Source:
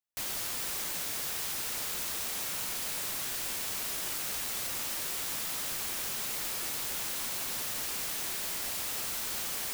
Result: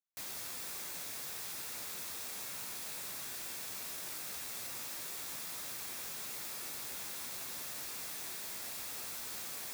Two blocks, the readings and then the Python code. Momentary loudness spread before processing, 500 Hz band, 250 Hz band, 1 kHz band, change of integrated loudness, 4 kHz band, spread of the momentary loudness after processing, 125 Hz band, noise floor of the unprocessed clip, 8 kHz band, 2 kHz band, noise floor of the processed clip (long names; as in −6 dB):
0 LU, −7.5 dB, −7.5 dB, −7.5 dB, −7.5 dB, −8.5 dB, 0 LU, −8.5 dB, −36 dBFS, −7.5 dB, −8.0 dB, −43 dBFS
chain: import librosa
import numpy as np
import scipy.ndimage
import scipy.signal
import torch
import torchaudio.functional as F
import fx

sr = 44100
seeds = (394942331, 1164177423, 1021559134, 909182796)

y = scipy.signal.sosfilt(scipy.signal.butter(2, 70.0, 'highpass', fs=sr, output='sos'), x)
y = fx.notch(y, sr, hz=3000.0, q=12.0)
y = fx.doubler(y, sr, ms=16.0, db=-10.5)
y = F.gain(torch.from_numpy(y), -8.0).numpy()